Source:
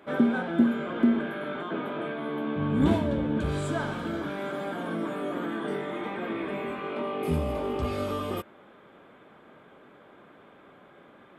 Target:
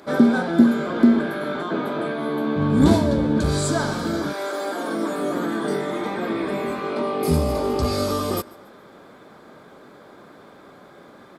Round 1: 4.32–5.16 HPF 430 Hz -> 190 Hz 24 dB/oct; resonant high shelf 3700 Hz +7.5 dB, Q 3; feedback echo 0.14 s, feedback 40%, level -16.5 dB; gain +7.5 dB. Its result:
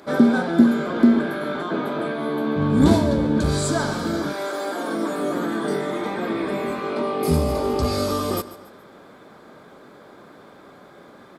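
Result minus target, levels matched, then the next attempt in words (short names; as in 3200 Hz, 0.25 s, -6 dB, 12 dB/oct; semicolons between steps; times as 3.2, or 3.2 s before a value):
echo-to-direct +7.5 dB
4.32–5.16 HPF 430 Hz -> 190 Hz 24 dB/oct; resonant high shelf 3700 Hz +7.5 dB, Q 3; feedback echo 0.14 s, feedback 40%, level -24 dB; gain +7.5 dB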